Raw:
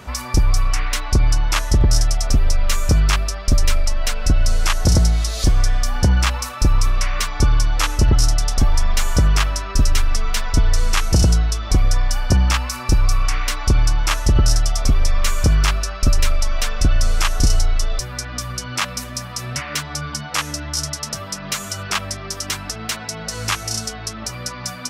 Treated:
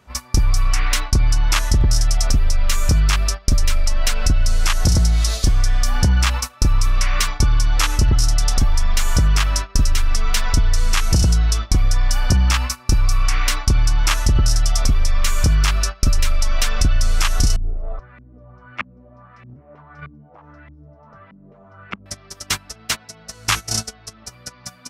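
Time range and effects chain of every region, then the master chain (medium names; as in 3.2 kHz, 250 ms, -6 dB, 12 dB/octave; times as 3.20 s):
17.56–22.06 s: treble shelf 5.8 kHz -11.5 dB + compression 5:1, threshold -22 dBFS + LFO low-pass saw up 1.6 Hz 220–2400 Hz
whole clip: gate -23 dBFS, range -20 dB; dynamic bell 510 Hz, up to -5 dB, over -34 dBFS, Q 0.71; compression, threshold -17 dBFS; trim +5 dB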